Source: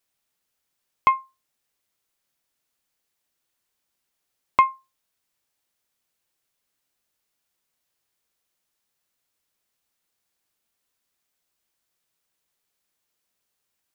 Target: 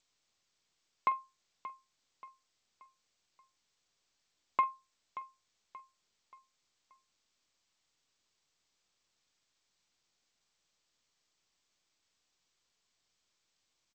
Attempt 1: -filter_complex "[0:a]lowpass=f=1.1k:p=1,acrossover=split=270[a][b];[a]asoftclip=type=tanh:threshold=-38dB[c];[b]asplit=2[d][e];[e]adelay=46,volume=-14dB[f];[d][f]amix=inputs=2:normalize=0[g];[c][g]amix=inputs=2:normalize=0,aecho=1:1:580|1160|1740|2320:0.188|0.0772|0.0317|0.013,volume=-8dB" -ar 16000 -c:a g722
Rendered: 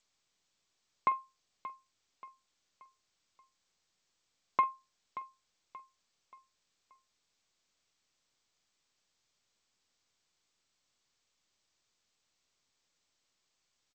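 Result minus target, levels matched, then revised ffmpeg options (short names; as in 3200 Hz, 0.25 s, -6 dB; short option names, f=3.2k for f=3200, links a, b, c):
250 Hz band +3.0 dB
-filter_complex "[0:a]lowpass=f=1.1k:p=1,lowshelf=f=330:g=-11.5,acrossover=split=270[a][b];[a]asoftclip=type=tanh:threshold=-38dB[c];[b]asplit=2[d][e];[e]adelay=46,volume=-14dB[f];[d][f]amix=inputs=2:normalize=0[g];[c][g]amix=inputs=2:normalize=0,aecho=1:1:580|1160|1740|2320:0.188|0.0772|0.0317|0.013,volume=-8dB" -ar 16000 -c:a g722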